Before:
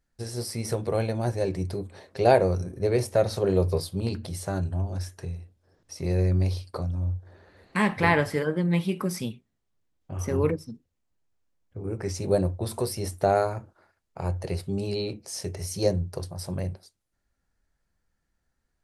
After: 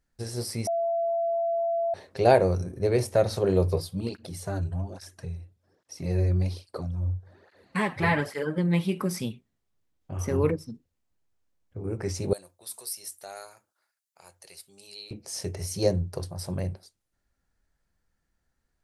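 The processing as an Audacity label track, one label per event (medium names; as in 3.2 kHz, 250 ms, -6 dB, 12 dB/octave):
0.670000	1.940000	bleep 674 Hz -23.5 dBFS
3.760000	8.580000	cancelling through-zero flanger nulls at 1.2 Hz, depth 5.1 ms
12.330000	15.110000	differentiator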